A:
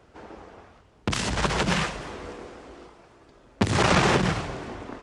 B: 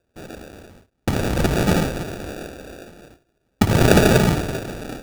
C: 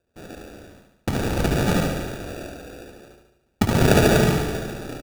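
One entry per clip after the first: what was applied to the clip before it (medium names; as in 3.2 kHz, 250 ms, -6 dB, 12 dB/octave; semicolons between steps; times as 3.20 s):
spring tank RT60 1.5 s, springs 58 ms, chirp 65 ms, DRR 9.5 dB; sample-and-hold 42×; gate with hold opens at -44 dBFS; trim +6 dB
feedback delay 72 ms, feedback 56%, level -5 dB; trim -3.5 dB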